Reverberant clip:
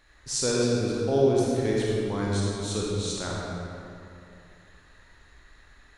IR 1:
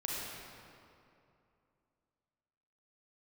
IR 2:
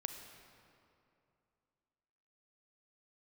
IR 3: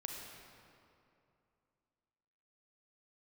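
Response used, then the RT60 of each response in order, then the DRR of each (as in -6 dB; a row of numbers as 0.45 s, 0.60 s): 1; 2.7 s, 2.7 s, 2.7 s; -4.5 dB, 6.0 dB, 0.5 dB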